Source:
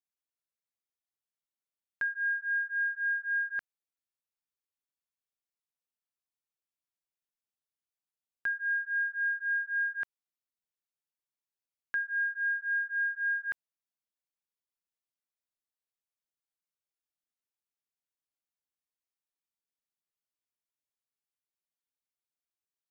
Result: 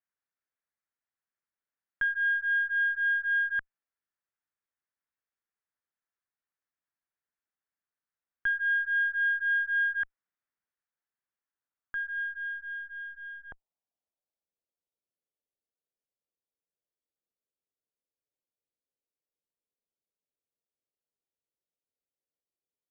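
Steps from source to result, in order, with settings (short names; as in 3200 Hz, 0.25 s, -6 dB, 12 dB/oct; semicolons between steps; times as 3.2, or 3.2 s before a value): in parallel at +3 dB: limiter -35 dBFS, peak gain reduction 9.5 dB; 10.02–12.18 on the sum: transient shaper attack -3 dB, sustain +2 dB; added harmonics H 2 -10 dB, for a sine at -22 dBFS; low-pass sweep 1700 Hz -> 510 Hz, 11.31–14.99; gain -8 dB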